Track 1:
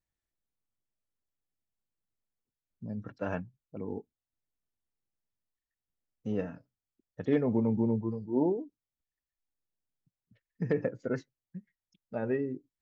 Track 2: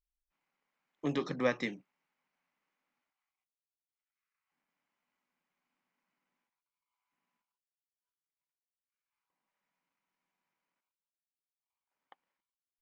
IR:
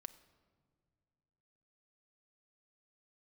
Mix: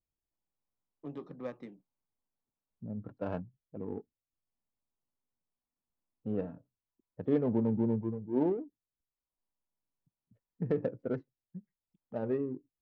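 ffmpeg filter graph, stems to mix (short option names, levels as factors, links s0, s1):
-filter_complex "[0:a]bass=f=250:g=-1,treble=f=4000:g=-8,volume=0.891[s0];[1:a]volume=0.355[s1];[s0][s1]amix=inputs=2:normalize=0,equalizer=f=1900:t=o:w=0.89:g=-9,adynamicsmooth=sensitivity=5.5:basefreq=1300"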